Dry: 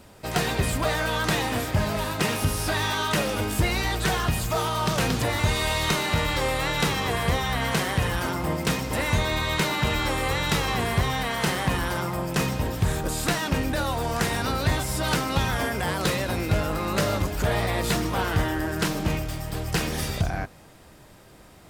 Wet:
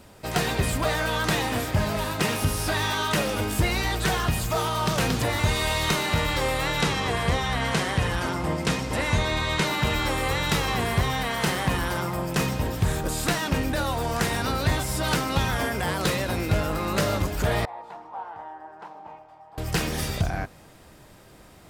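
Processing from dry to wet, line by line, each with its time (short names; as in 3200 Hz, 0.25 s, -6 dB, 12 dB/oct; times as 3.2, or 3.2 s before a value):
6.81–9.67 LPF 9500 Hz
17.65–19.58 band-pass 850 Hz, Q 6.9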